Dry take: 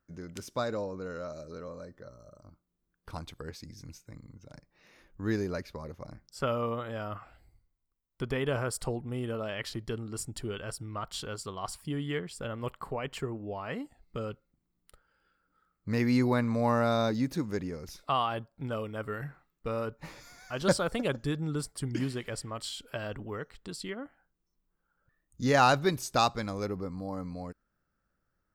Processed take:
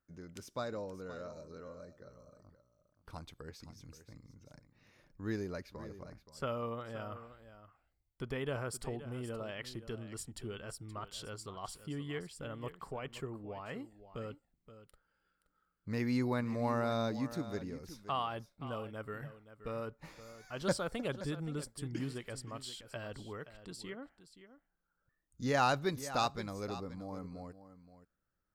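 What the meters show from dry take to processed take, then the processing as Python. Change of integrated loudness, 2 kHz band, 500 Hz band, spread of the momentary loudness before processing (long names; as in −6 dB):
−7.0 dB, −7.0 dB, −7.0 dB, 17 LU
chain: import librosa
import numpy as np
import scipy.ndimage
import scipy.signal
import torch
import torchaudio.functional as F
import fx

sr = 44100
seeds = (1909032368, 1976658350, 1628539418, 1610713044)

y = x + 10.0 ** (-13.5 / 20.0) * np.pad(x, (int(524 * sr / 1000.0), 0))[:len(x)]
y = y * 10.0 ** (-7.0 / 20.0)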